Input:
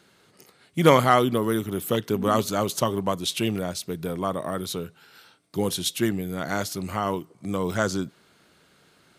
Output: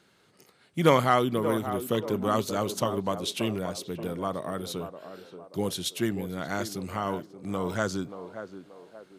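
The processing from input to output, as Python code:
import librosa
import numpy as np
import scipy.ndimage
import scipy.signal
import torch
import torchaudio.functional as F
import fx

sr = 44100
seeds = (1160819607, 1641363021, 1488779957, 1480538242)

p1 = fx.high_shelf(x, sr, hz=8600.0, db=-4.0)
p2 = p1 + fx.echo_banded(p1, sr, ms=580, feedback_pct=43, hz=550.0, wet_db=-8.5, dry=0)
y = p2 * 10.0 ** (-4.0 / 20.0)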